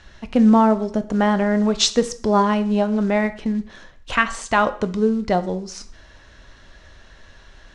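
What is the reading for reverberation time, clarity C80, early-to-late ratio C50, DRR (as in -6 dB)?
0.50 s, 19.0 dB, 15.5 dB, 10.5 dB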